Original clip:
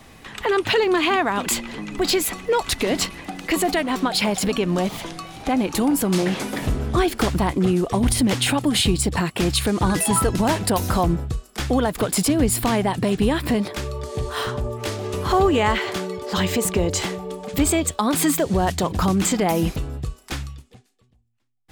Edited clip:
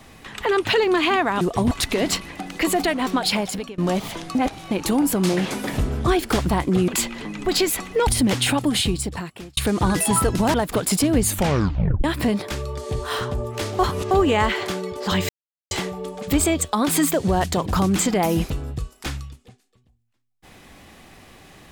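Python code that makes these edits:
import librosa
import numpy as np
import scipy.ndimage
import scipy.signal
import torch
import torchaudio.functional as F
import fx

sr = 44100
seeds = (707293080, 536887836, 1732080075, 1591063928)

y = fx.edit(x, sr, fx.swap(start_s=1.41, length_s=1.19, other_s=7.77, other_length_s=0.3),
    fx.fade_out_to(start_s=4.18, length_s=0.49, floor_db=-23.0),
    fx.reverse_span(start_s=5.24, length_s=0.36),
    fx.fade_out_span(start_s=8.61, length_s=0.96),
    fx.cut(start_s=10.54, length_s=1.26),
    fx.tape_stop(start_s=12.48, length_s=0.82),
    fx.reverse_span(start_s=15.05, length_s=0.32),
    fx.silence(start_s=16.55, length_s=0.42), tone=tone)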